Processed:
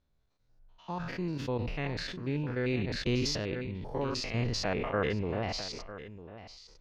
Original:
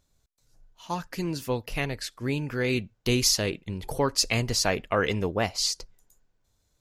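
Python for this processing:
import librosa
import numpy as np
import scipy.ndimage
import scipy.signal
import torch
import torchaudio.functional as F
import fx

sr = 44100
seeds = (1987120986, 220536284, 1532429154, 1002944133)

y = fx.spec_steps(x, sr, hold_ms=100)
y = fx.air_absorb(y, sr, metres=230.0)
y = y + 10.0 ** (-14.5 / 20.0) * np.pad(y, (int(951 * sr / 1000.0), 0))[:len(y)]
y = fx.sustainer(y, sr, db_per_s=27.0)
y = y * librosa.db_to_amplitude(-3.5)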